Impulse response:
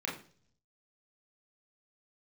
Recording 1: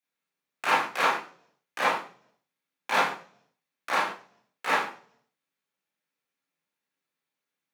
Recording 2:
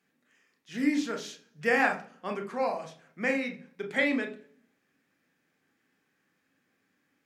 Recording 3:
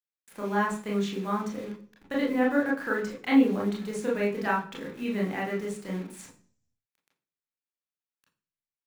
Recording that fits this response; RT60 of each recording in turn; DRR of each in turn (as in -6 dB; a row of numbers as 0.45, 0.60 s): 3; 0.45, 0.45, 0.45 s; -7.5, 4.0, -3.5 dB